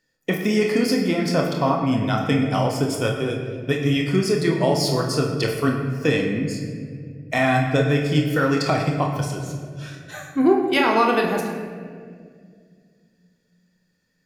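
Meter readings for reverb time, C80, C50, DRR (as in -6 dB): 2.1 s, 6.0 dB, 4.0 dB, 1.0 dB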